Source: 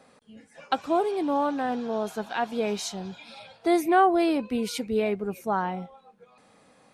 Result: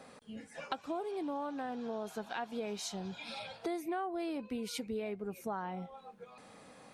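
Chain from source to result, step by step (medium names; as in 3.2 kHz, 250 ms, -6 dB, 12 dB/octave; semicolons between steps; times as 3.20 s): compression 4:1, threshold -41 dBFS, peak gain reduction 21.5 dB; trim +2.5 dB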